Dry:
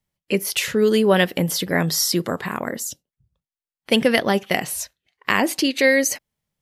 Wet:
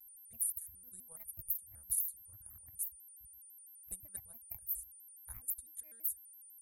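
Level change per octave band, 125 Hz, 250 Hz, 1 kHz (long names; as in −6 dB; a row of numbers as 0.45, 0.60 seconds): −33.5 dB, below −40 dB, below −40 dB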